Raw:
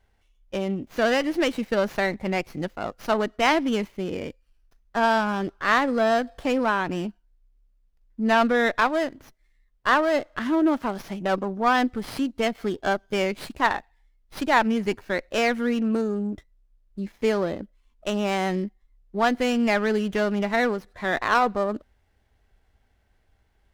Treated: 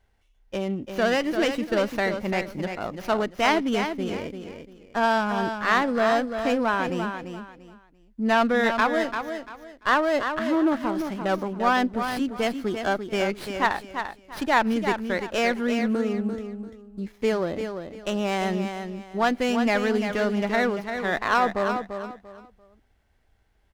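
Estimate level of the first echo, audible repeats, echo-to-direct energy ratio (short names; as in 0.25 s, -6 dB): -7.5 dB, 3, -7.0 dB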